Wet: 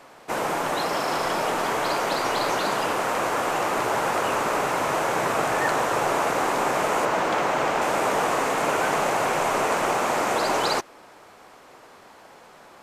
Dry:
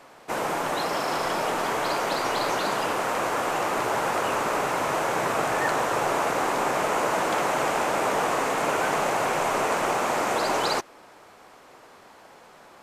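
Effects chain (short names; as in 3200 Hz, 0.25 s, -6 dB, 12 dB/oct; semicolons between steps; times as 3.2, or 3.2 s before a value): 7.05–7.82 bell 11000 Hz -9.5 dB 1.1 oct; gain +1.5 dB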